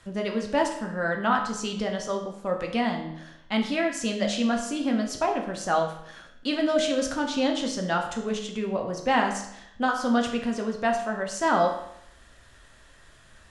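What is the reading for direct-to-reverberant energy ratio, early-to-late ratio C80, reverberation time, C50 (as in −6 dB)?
1.5 dB, 9.5 dB, 0.75 s, 7.0 dB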